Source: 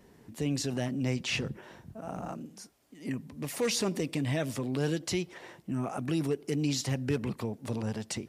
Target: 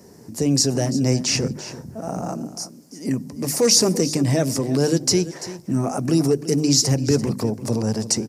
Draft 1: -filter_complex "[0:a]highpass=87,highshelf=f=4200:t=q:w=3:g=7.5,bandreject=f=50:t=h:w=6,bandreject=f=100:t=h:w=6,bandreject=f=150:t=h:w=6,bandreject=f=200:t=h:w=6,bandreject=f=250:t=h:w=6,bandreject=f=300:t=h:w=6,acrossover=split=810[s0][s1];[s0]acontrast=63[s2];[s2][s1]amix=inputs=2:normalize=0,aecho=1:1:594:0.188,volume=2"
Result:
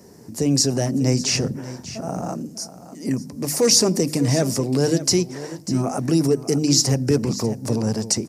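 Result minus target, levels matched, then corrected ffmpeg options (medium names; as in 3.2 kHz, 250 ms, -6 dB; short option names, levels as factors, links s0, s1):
echo 254 ms late
-filter_complex "[0:a]highpass=87,highshelf=f=4200:t=q:w=3:g=7.5,bandreject=f=50:t=h:w=6,bandreject=f=100:t=h:w=6,bandreject=f=150:t=h:w=6,bandreject=f=200:t=h:w=6,bandreject=f=250:t=h:w=6,bandreject=f=300:t=h:w=6,acrossover=split=810[s0][s1];[s0]acontrast=63[s2];[s2][s1]amix=inputs=2:normalize=0,aecho=1:1:340:0.188,volume=2"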